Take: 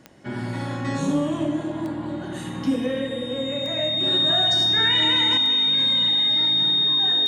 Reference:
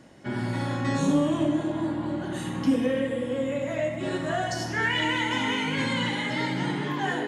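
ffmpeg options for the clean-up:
-af "adeclick=t=4,bandreject=f=3700:w=30,asetnsamples=n=441:p=0,asendcmd='5.37 volume volume 7.5dB',volume=1"

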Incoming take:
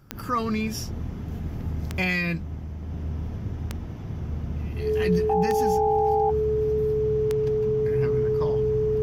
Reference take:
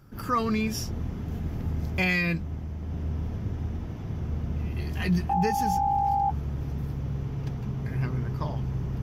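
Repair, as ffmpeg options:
-af "adeclick=t=4,bandreject=f=430:w=30"

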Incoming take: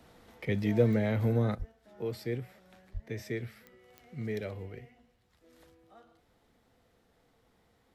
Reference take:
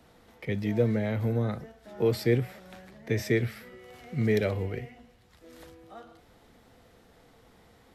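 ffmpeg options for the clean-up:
-filter_complex "[0:a]adeclick=t=4,asplit=3[s0][s1][s2];[s0]afade=t=out:st=1.58:d=0.02[s3];[s1]highpass=f=140:w=0.5412,highpass=f=140:w=1.3066,afade=t=in:st=1.58:d=0.02,afade=t=out:st=1.7:d=0.02[s4];[s2]afade=t=in:st=1.7:d=0.02[s5];[s3][s4][s5]amix=inputs=3:normalize=0,asplit=3[s6][s7][s8];[s6]afade=t=out:st=2.93:d=0.02[s9];[s7]highpass=f=140:w=0.5412,highpass=f=140:w=1.3066,afade=t=in:st=2.93:d=0.02,afade=t=out:st=3.05:d=0.02[s10];[s8]afade=t=in:st=3.05:d=0.02[s11];[s9][s10][s11]amix=inputs=3:normalize=0,asetnsamples=n=441:p=0,asendcmd='1.55 volume volume 10.5dB',volume=1"

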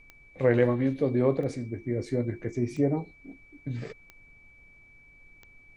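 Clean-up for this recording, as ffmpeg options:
-af "adeclick=t=4,bandreject=f=2300:w=30,agate=range=0.0891:threshold=0.00398"

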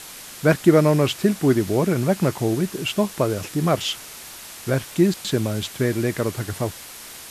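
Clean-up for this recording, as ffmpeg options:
-af "afwtdn=0.014"

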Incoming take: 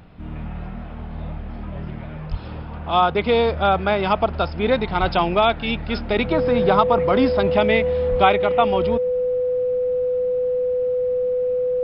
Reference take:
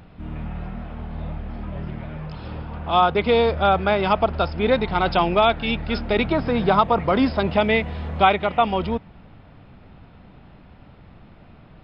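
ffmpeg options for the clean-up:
-filter_complex "[0:a]bandreject=f=500:w=30,asplit=3[s0][s1][s2];[s0]afade=t=out:st=2.3:d=0.02[s3];[s1]highpass=f=140:w=0.5412,highpass=f=140:w=1.3066,afade=t=in:st=2.3:d=0.02,afade=t=out:st=2.42:d=0.02[s4];[s2]afade=t=in:st=2.42:d=0.02[s5];[s3][s4][s5]amix=inputs=3:normalize=0,asplit=3[s6][s7][s8];[s6]afade=t=out:st=5:d=0.02[s9];[s7]highpass=f=140:w=0.5412,highpass=f=140:w=1.3066,afade=t=in:st=5:d=0.02,afade=t=out:st=5.12:d=0.02[s10];[s8]afade=t=in:st=5.12:d=0.02[s11];[s9][s10][s11]amix=inputs=3:normalize=0,asplit=3[s12][s13][s14];[s12]afade=t=out:st=8.1:d=0.02[s15];[s13]highpass=f=140:w=0.5412,highpass=f=140:w=1.3066,afade=t=in:st=8.1:d=0.02,afade=t=out:st=8.22:d=0.02[s16];[s14]afade=t=in:st=8.22:d=0.02[s17];[s15][s16][s17]amix=inputs=3:normalize=0"

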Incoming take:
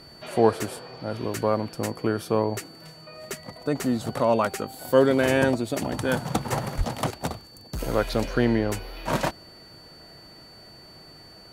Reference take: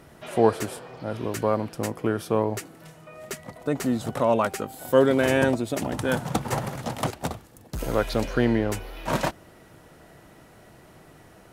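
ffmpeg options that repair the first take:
-filter_complex "[0:a]bandreject=f=4500:w=30,asplit=3[s0][s1][s2];[s0]afade=t=out:st=6.77:d=0.02[s3];[s1]highpass=f=140:w=0.5412,highpass=f=140:w=1.3066,afade=t=in:st=6.77:d=0.02,afade=t=out:st=6.89:d=0.02[s4];[s2]afade=t=in:st=6.89:d=0.02[s5];[s3][s4][s5]amix=inputs=3:normalize=0"

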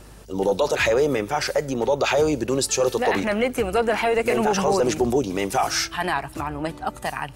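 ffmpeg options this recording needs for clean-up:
-af "bandreject=f=50.5:t=h:w=4,bandreject=f=101:t=h:w=4,bandreject=f=151.5:t=h:w=4,bandreject=f=202:t=h:w=4"

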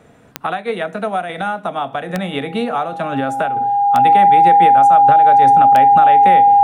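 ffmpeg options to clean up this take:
-af "adeclick=t=4,bandreject=f=810:w=30"

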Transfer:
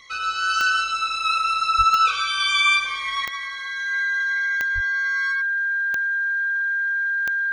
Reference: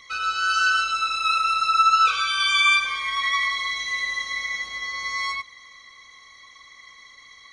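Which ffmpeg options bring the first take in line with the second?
-filter_complex "[0:a]adeclick=t=4,bandreject=f=1600:w=30,asplit=3[s0][s1][s2];[s0]afade=t=out:st=1.77:d=0.02[s3];[s1]highpass=f=140:w=0.5412,highpass=f=140:w=1.3066,afade=t=in:st=1.77:d=0.02,afade=t=out:st=1.89:d=0.02[s4];[s2]afade=t=in:st=1.89:d=0.02[s5];[s3][s4][s5]amix=inputs=3:normalize=0,asplit=3[s6][s7][s8];[s6]afade=t=out:st=4.74:d=0.02[s9];[s7]highpass=f=140:w=0.5412,highpass=f=140:w=1.3066,afade=t=in:st=4.74:d=0.02,afade=t=out:st=4.86:d=0.02[s10];[s8]afade=t=in:st=4.86:d=0.02[s11];[s9][s10][s11]amix=inputs=3:normalize=0,asetnsamples=n=441:p=0,asendcmd='3.25 volume volume 8dB',volume=1"

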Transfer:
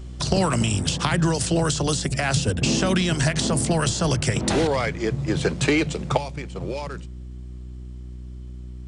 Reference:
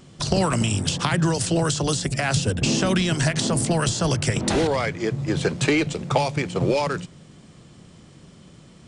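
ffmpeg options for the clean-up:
-af "bandreject=f=61.8:t=h:w=4,bandreject=f=123.6:t=h:w=4,bandreject=f=185.4:t=h:w=4,bandreject=f=247.2:t=h:w=4,bandreject=f=309:t=h:w=4,bandreject=f=370.8:t=h:w=4,asetnsamples=n=441:p=0,asendcmd='6.17 volume volume 9dB',volume=1"

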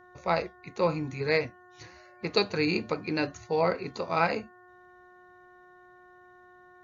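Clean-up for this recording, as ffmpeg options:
-af "bandreject=f=361.5:t=h:w=4,bandreject=f=723:t=h:w=4,bandreject=f=1084.5:t=h:w=4,bandreject=f=1446:t=h:w=4,bandreject=f=1807.5:t=h:w=4"

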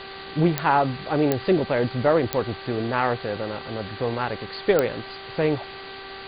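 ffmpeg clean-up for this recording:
-af "adeclick=t=4,bandreject=f=388.9:t=h:w=4,bandreject=f=777.8:t=h:w=4,bandreject=f=1166.7:t=h:w=4,bandreject=f=1555.6:t=h:w=4,bandreject=f=1944.5:t=h:w=4,afwtdn=0.018"

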